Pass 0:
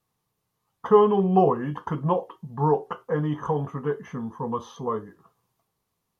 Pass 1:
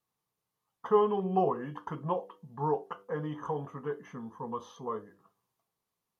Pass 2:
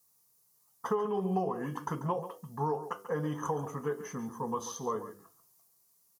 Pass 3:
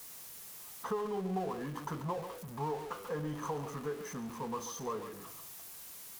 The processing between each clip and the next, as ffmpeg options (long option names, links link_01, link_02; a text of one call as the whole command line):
ffmpeg -i in.wav -af "lowshelf=frequency=160:gain=-8.5,bandreject=frequency=98.27:width_type=h:width=4,bandreject=frequency=196.54:width_type=h:width=4,bandreject=frequency=294.81:width_type=h:width=4,bandreject=frequency=393.08:width_type=h:width=4,bandreject=frequency=491.35:width_type=h:width=4,bandreject=frequency=589.62:width_type=h:width=4,bandreject=frequency=687.89:width_type=h:width=4,volume=-7dB" out.wav
ffmpeg -i in.wav -filter_complex "[0:a]acompressor=threshold=-31dB:ratio=10,aexciter=amount=5.9:drive=4.9:freq=4700,asplit=2[link_01][link_02];[link_02]adelay=139.9,volume=-12dB,highshelf=frequency=4000:gain=-3.15[link_03];[link_01][link_03]amix=inputs=2:normalize=0,volume=3.5dB" out.wav
ffmpeg -i in.wav -af "aeval=exprs='val(0)+0.5*0.0133*sgn(val(0))':channel_layout=same,volume=-6dB" out.wav